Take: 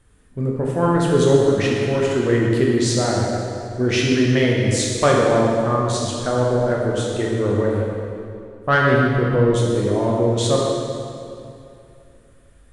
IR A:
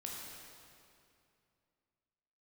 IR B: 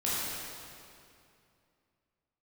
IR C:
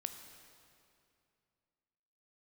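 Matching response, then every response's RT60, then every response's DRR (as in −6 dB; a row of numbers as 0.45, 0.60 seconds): A; 2.5, 2.5, 2.5 seconds; −3.0, −9.5, 6.5 decibels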